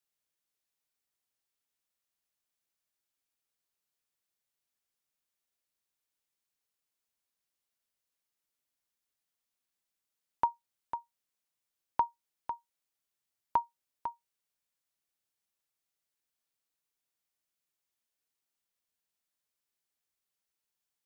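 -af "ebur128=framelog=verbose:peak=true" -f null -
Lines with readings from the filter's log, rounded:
Integrated loudness:
  I:         -37.6 LUFS
  Threshold: -48.1 LUFS
Loudness range:
  LRA:         3.5 LU
  Threshold: -61.6 LUFS
  LRA low:   -43.5 LUFS
  LRA high:  -40.0 LUFS
True peak:
  Peak:      -16.1 dBFS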